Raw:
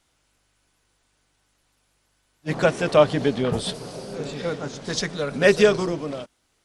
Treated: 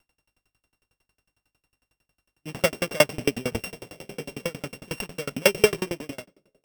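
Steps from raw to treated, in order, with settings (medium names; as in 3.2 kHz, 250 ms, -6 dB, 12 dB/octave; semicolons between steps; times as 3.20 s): sorted samples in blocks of 16 samples; on a send at -22.5 dB: reverberation RT60 1.5 s, pre-delay 5 ms; on the sum: sawtooth tremolo in dB decaying 11 Hz, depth 32 dB; trim +2.5 dB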